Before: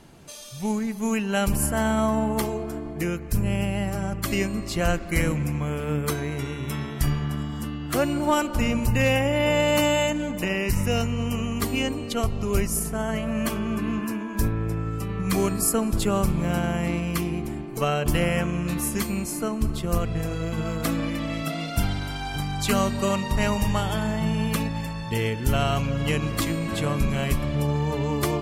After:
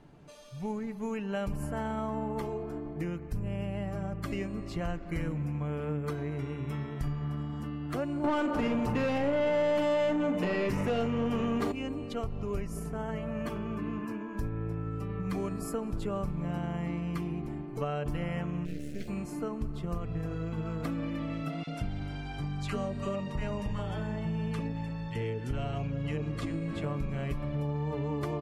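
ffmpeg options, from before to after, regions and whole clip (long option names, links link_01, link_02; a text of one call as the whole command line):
ffmpeg -i in.wav -filter_complex "[0:a]asettb=1/sr,asplit=3[link_01][link_02][link_03];[link_01]atrim=end=8.244[link_04];[link_02]atrim=start=8.24:end=11.72,asetpts=PTS-STARTPTS,afade=type=in:duration=0.004:curve=qsin,afade=type=out:start_time=3.476:duration=0.004:curve=qsin,equalizer=frequency=240:width_type=o:width=2.6:gain=9.5,asplit=2[link_05][link_06];[link_06]highpass=frequency=720:poles=1,volume=23dB,asoftclip=type=tanh:threshold=-5dB[link_07];[link_05][link_07]amix=inputs=2:normalize=0,lowpass=frequency=6600:poles=1,volume=-6dB,asplit=2[link_08][link_09];[link_09]adelay=39,volume=-11dB[link_10];[link_08][link_10]amix=inputs=2:normalize=0,atrim=end_sample=153468[link_11];[link_03]atrim=start=11.716[link_12];[link_04][link_11]acrossfade=duration=0.004:curve1=hsin:curve2=qsin[link_13];[link_13][link_12]acrossfade=duration=0.004:curve1=qsin:curve2=hsin,asettb=1/sr,asplit=3[link_14][link_15][link_16];[link_14]atrim=end=18.654[link_17];[link_15]atrim=start=18.65:end=19.08,asetpts=PTS-STARTPTS,afade=type=in:duration=0.004:curve=qsin,afade=type=out:start_time=0.426:duration=0.004:curve=qsin,acrossover=split=7300[link_18][link_19];[link_19]acompressor=threshold=-42dB:ratio=4:attack=1:release=60[link_20];[link_18][link_20]amix=inputs=2:normalize=0,acrusher=bits=3:dc=4:mix=0:aa=0.000001,asuperstop=centerf=1000:order=4:qfactor=0.78[link_21];[link_16]atrim=start=19.076[link_22];[link_17][link_21]acrossfade=duration=0.004:curve1=hsin:curve2=qsin[link_23];[link_23][link_22]acrossfade=duration=0.004:curve1=qsin:curve2=hsin,asettb=1/sr,asplit=3[link_24][link_25][link_26];[link_24]atrim=end=21.634[link_27];[link_25]atrim=start=21.63:end=26.84,asetpts=PTS-STARTPTS,afade=type=in:duration=0.004:curve=qsin,afade=type=out:start_time=5.206:duration=0.004:curve=qsin,lowpass=frequency=11000:width=0.5412,lowpass=frequency=11000:width=1.3066,acrossover=split=1000[link_28][link_29];[link_28]adelay=40[link_30];[link_30][link_29]amix=inputs=2:normalize=0,atrim=end_sample=229761[link_31];[link_26]atrim=start=26.836[link_32];[link_27][link_31]acrossfade=duration=0.004:curve1=hsin:curve2=qsin[link_33];[link_33][link_32]acrossfade=duration=0.004:curve1=qsin:curve2=hsin,lowpass=frequency=1400:poles=1,aecho=1:1:6.8:0.33,acompressor=threshold=-25dB:ratio=3,volume=-5.5dB" out.wav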